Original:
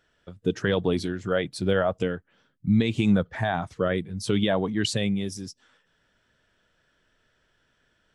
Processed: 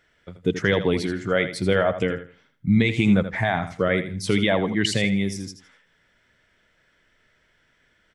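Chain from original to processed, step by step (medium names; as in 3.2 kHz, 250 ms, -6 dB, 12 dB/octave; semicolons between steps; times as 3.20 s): peaking EQ 2.1 kHz +12.5 dB 0.26 oct; on a send: feedback delay 81 ms, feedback 25%, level -11 dB; on the sum: trim +2.5 dB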